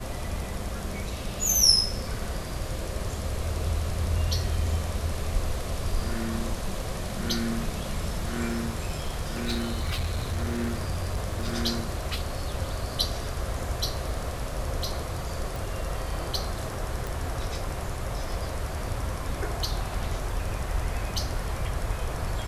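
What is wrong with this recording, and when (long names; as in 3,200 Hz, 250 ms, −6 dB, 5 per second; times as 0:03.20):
0:08.49–0:11.50: clipping −23.5 dBFS
0:15.56: click
0:17.07: click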